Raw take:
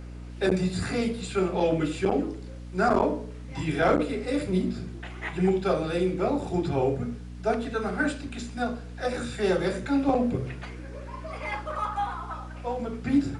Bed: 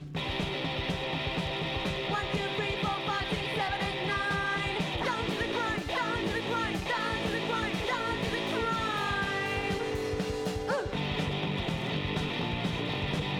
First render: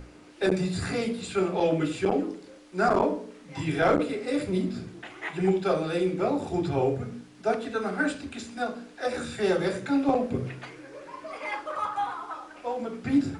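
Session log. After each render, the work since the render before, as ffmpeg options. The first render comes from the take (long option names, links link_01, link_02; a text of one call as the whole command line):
ffmpeg -i in.wav -af "bandreject=frequency=60:width_type=h:width=6,bandreject=frequency=120:width_type=h:width=6,bandreject=frequency=180:width_type=h:width=6,bandreject=frequency=240:width_type=h:width=6" out.wav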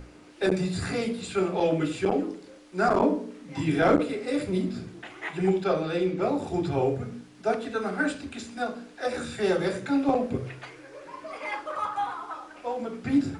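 ffmpeg -i in.wav -filter_complex "[0:a]asettb=1/sr,asplit=3[link_01][link_02][link_03];[link_01]atrim=end=3.014[link_04];[link_02]atrim=start=3.01:end=3.96,asetpts=PTS-STARTPTS,afade=type=in:duration=0.004:curve=qsin,afade=type=out:start_time=0.946:duration=0.004:curve=qsin,equalizer=frequency=250:width_type=o:width=0.77:gain=7.5[link_05];[link_03]atrim=start=3.956[link_06];[link_04][link_05]acrossfade=duration=0.004:curve1=hsin:curve2=qsin[link_07];[link_07][link_06]acrossfade=duration=0.004:curve1=qsin:curve2=hsin,asettb=1/sr,asplit=3[link_08][link_09][link_10];[link_08]atrim=end=5.644[link_11];[link_09]atrim=start=5.64:end=6.22,asetpts=PTS-STARTPTS,afade=type=in:duration=0.004:curve=qsin,afade=type=out:start_time=0.576:duration=0.004:curve=qsin,lowpass=6100[link_12];[link_10]atrim=start=6.216[link_13];[link_11][link_12]acrossfade=duration=0.004:curve1=hsin:curve2=qsin[link_14];[link_14][link_13]acrossfade=duration=0.004:curve1=qsin:curve2=hsin,asettb=1/sr,asplit=3[link_15][link_16][link_17];[link_15]atrim=end=10.374[link_18];[link_16]atrim=start=10.37:end=11.05,asetpts=PTS-STARTPTS,afade=type=in:duration=0.004:curve=qsin,afade=type=out:start_time=0.676:duration=0.004:curve=qsin,equalizer=frequency=210:width_type=o:width=0.77:gain=-10.5[link_19];[link_17]atrim=start=11.046[link_20];[link_18][link_19]acrossfade=duration=0.004:curve1=hsin:curve2=qsin[link_21];[link_21][link_20]acrossfade=duration=0.004:curve1=qsin:curve2=hsin" out.wav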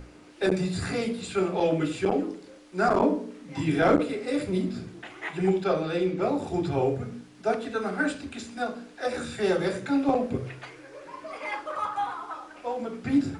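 ffmpeg -i in.wav -af anull out.wav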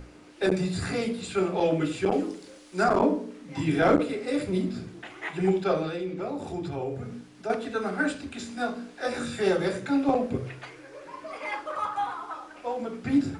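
ffmpeg -i in.wav -filter_complex "[0:a]asettb=1/sr,asplit=3[link_01][link_02][link_03];[link_01]atrim=end=2.124[link_04];[link_02]atrim=start=2.12:end=2.84,asetpts=PTS-STARTPTS,afade=type=in:duration=0.004:curve=qsin,afade=type=out:start_time=0.716:duration=0.004:curve=qsin,highshelf=frequency=3500:gain=9[link_05];[link_03]atrim=start=2.836[link_06];[link_04][link_05]acrossfade=duration=0.004:curve1=hsin:curve2=qsin[link_07];[link_07][link_06]acrossfade=duration=0.004:curve1=qsin:curve2=hsin,asettb=1/sr,asplit=3[link_08][link_09][link_10];[link_08]atrim=end=5.894[link_11];[link_09]atrim=start=5.89:end=7.5,asetpts=PTS-STARTPTS,afade=type=in:duration=0.004:curve=qsin,afade=type=out:start_time=1.606:duration=0.004:curve=qsin,acompressor=threshold=-33dB:ratio=2:attack=3.2:release=140:knee=1:detection=peak[link_12];[link_10]atrim=start=7.496[link_13];[link_11][link_12]acrossfade=duration=0.004:curve1=hsin:curve2=qsin[link_14];[link_14][link_13]acrossfade=duration=0.004:curve1=qsin:curve2=hsin,asettb=1/sr,asplit=3[link_15][link_16][link_17];[link_15]atrim=end=8.384[link_18];[link_16]atrim=start=8.38:end=9.49,asetpts=PTS-STARTPTS,afade=type=in:duration=0.004:curve=qsin,afade=type=out:start_time=1.106:duration=0.004:curve=qsin,asplit=2[link_19][link_20];[link_20]adelay=21,volume=-4dB[link_21];[link_19][link_21]amix=inputs=2:normalize=0,atrim=end_sample=48951[link_22];[link_17]atrim=start=9.486[link_23];[link_18][link_22]acrossfade=duration=0.004:curve1=hsin:curve2=qsin[link_24];[link_24][link_23]acrossfade=duration=0.004:curve1=qsin:curve2=hsin" out.wav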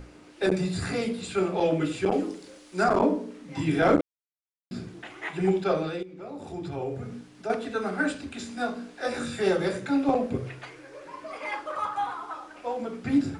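ffmpeg -i in.wav -filter_complex "[0:a]asplit=4[link_01][link_02][link_03][link_04];[link_01]atrim=end=4.01,asetpts=PTS-STARTPTS,afade=type=out:start_time=4.006:duration=0.004:curve=hsin[link_05];[link_02]atrim=start=4.01:end=4.71,asetpts=PTS-STARTPTS,volume=0[link_06];[link_03]atrim=start=4.71:end=6.03,asetpts=PTS-STARTPTS,afade=type=in:duration=0.004:curve=hsin,afade=type=out:start_time=1.316:duration=0.004:curve=hsin:silence=0.199526[link_07];[link_04]atrim=start=6.03,asetpts=PTS-STARTPTS,afade=type=in:duration=0.81:silence=0.199526[link_08];[link_05][link_06][link_07][link_08]concat=n=4:v=0:a=1" out.wav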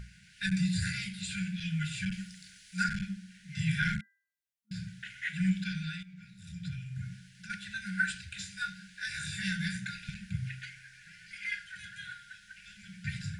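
ffmpeg -i in.wav -af "afftfilt=real='re*(1-between(b*sr/4096,210,1400))':imag='im*(1-between(b*sr/4096,210,1400))':win_size=4096:overlap=0.75,bandreject=frequency=397.3:width_type=h:width=4,bandreject=frequency=794.6:width_type=h:width=4,bandreject=frequency=1191.9:width_type=h:width=4,bandreject=frequency=1589.2:width_type=h:width=4,bandreject=frequency=1986.5:width_type=h:width=4" out.wav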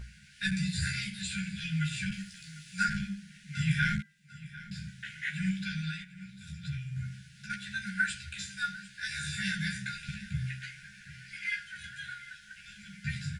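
ffmpeg -i in.wav -filter_complex "[0:a]asplit=2[link_01][link_02];[link_02]adelay=14,volume=-3.5dB[link_03];[link_01][link_03]amix=inputs=2:normalize=0,aecho=1:1:748|1496|2244:0.126|0.0403|0.0129" out.wav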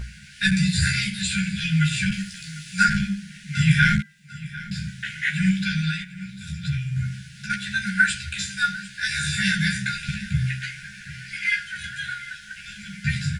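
ffmpeg -i in.wav -af "volume=11dB" out.wav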